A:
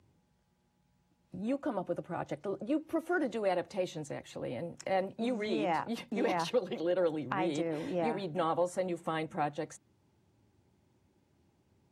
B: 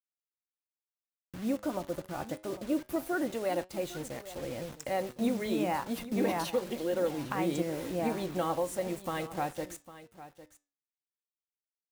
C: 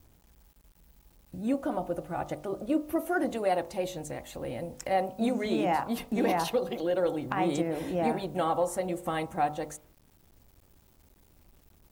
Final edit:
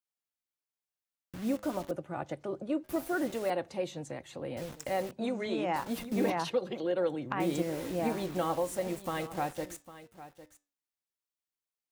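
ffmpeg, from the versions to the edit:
-filter_complex "[0:a]asplit=4[a][b][c][d];[1:a]asplit=5[e][f][g][h][i];[e]atrim=end=1.912[j];[a]atrim=start=1.908:end=2.842[k];[f]atrim=start=2.838:end=3.502[l];[b]atrim=start=3.498:end=4.572[m];[g]atrim=start=4.568:end=5.112[n];[c]atrim=start=5.108:end=5.762[o];[h]atrim=start=5.758:end=6.302[p];[d]atrim=start=6.298:end=7.402[q];[i]atrim=start=7.398[r];[j][k]acrossfade=d=0.004:c1=hsin:c2=hsin[s];[s][l]acrossfade=d=0.004:c1=hsin:c2=hsin[t];[t][m]acrossfade=d=0.004:c1=hsin:c2=hsin[u];[u][n]acrossfade=d=0.004:c1=hsin:c2=hsin[v];[v][o]acrossfade=d=0.004:c1=hsin:c2=hsin[w];[w][p]acrossfade=d=0.004:c1=hsin:c2=hsin[x];[x][q]acrossfade=d=0.004:c1=hsin:c2=hsin[y];[y][r]acrossfade=d=0.004:c1=hsin:c2=hsin"

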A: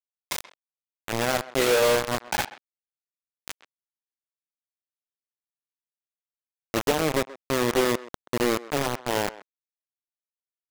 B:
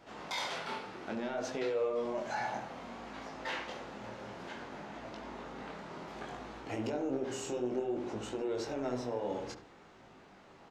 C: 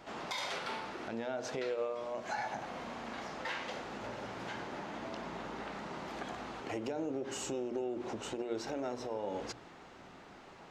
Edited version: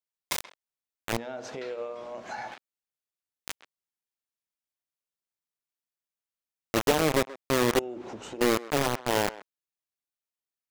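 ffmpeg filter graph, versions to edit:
-filter_complex "[2:a]asplit=2[a][b];[0:a]asplit=3[c][d][e];[c]atrim=end=1.172[f];[a]atrim=start=1.168:end=2.512[g];[d]atrim=start=2.508:end=7.792[h];[b]atrim=start=7.788:end=8.412[i];[e]atrim=start=8.408[j];[f][g]acrossfade=d=0.004:c1=hsin:c2=hsin[k];[k][h]acrossfade=d=0.004:c1=hsin:c2=hsin[l];[l][i]acrossfade=d=0.004:c1=hsin:c2=hsin[m];[m][j]acrossfade=d=0.004:c1=hsin:c2=hsin"

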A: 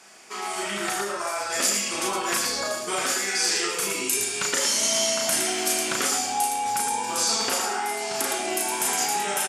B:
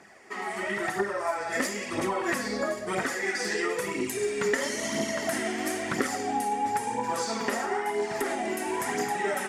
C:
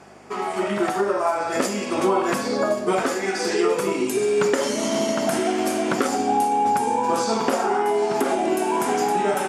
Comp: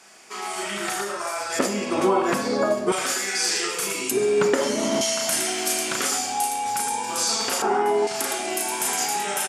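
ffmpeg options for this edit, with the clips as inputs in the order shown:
-filter_complex "[2:a]asplit=3[a][b][c];[0:a]asplit=4[d][e][f][g];[d]atrim=end=1.592[h];[a]atrim=start=1.588:end=2.922[i];[e]atrim=start=2.918:end=4.112[j];[b]atrim=start=4.108:end=5.012[k];[f]atrim=start=5.008:end=7.622[l];[c]atrim=start=7.618:end=8.072[m];[g]atrim=start=8.068[n];[h][i]acrossfade=d=0.004:c1=hsin:c2=hsin[o];[o][j]acrossfade=d=0.004:c1=hsin:c2=hsin[p];[p][k]acrossfade=d=0.004:c1=hsin:c2=hsin[q];[q][l]acrossfade=d=0.004:c1=hsin:c2=hsin[r];[r][m]acrossfade=d=0.004:c1=hsin:c2=hsin[s];[s][n]acrossfade=d=0.004:c1=hsin:c2=hsin"

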